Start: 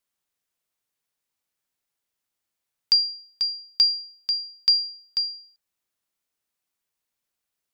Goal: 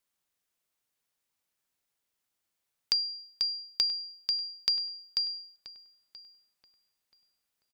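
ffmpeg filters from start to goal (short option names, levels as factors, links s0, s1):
-filter_complex "[0:a]acompressor=threshold=0.0398:ratio=3,asplit=2[s0][s1];[s1]adelay=980,lowpass=f=2500:p=1,volume=0.188,asplit=2[s2][s3];[s3]adelay=980,lowpass=f=2500:p=1,volume=0.27,asplit=2[s4][s5];[s5]adelay=980,lowpass=f=2500:p=1,volume=0.27[s6];[s0][s2][s4][s6]amix=inputs=4:normalize=0"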